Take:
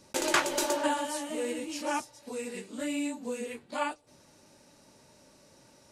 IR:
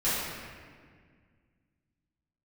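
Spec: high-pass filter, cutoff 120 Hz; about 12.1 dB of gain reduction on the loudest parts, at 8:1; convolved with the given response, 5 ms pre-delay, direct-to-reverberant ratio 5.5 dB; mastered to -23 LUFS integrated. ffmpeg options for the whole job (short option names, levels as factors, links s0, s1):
-filter_complex "[0:a]highpass=120,acompressor=threshold=0.0224:ratio=8,asplit=2[s0][s1];[1:a]atrim=start_sample=2205,adelay=5[s2];[s1][s2]afir=irnorm=-1:irlink=0,volume=0.141[s3];[s0][s3]amix=inputs=2:normalize=0,volume=5.01"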